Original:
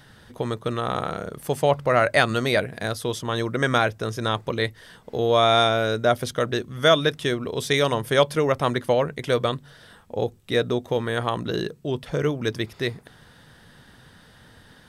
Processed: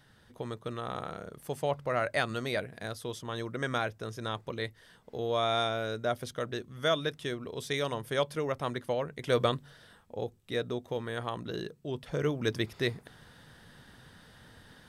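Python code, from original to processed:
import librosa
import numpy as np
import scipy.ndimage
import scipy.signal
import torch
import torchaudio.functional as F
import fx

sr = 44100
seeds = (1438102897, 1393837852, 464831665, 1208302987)

y = fx.gain(x, sr, db=fx.line((9.12, -11.0), (9.41, -3.0), (10.15, -10.5), (11.79, -10.5), (12.54, -4.0)))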